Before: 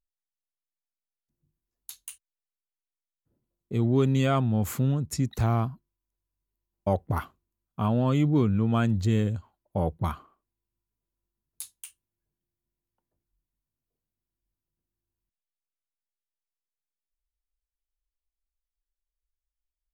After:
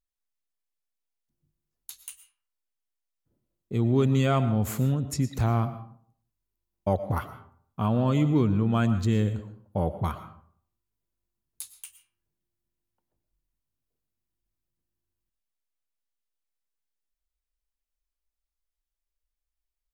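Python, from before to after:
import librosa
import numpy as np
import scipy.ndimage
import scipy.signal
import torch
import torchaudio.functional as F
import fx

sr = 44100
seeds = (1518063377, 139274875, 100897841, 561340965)

y = fx.rev_freeverb(x, sr, rt60_s=0.57, hf_ratio=0.5, predelay_ms=75, drr_db=11.5)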